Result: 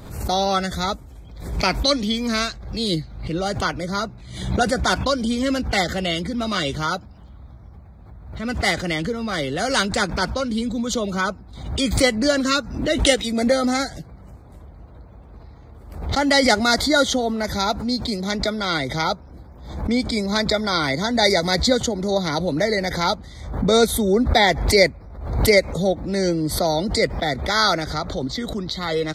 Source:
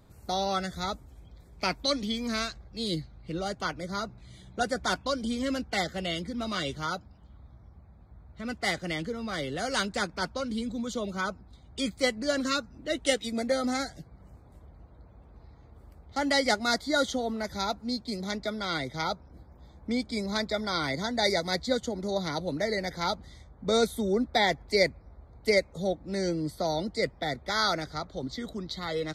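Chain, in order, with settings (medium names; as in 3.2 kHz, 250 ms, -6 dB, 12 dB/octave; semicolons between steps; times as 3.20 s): swell ahead of each attack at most 68 dB/s; trim +8.5 dB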